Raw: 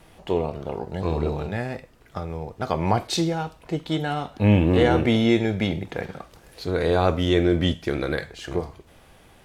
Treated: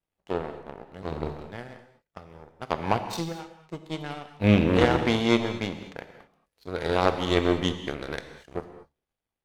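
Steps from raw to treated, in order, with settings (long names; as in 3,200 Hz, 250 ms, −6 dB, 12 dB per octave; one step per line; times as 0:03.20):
power curve on the samples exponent 2
reverb whose tail is shaped and stops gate 260 ms flat, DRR 8.5 dB
level +4 dB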